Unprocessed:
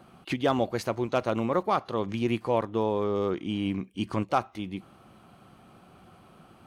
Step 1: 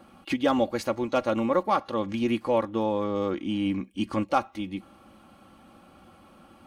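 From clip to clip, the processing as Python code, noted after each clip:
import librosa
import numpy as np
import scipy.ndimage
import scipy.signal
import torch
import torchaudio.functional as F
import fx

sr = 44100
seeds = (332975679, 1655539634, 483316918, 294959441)

y = x + 0.63 * np.pad(x, (int(3.6 * sr / 1000.0), 0))[:len(x)]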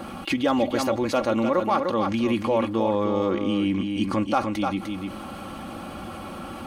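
y = x + 10.0 ** (-8.5 / 20.0) * np.pad(x, (int(301 * sr / 1000.0), 0))[:len(x)]
y = fx.env_flatten(y, sr, amount_pct=50)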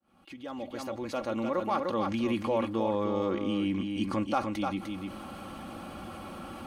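y = fx.fade_in_head(x, sr, length_s=1.93)
y = F.gain(torch.from_numpy(y), -6.0).numpy()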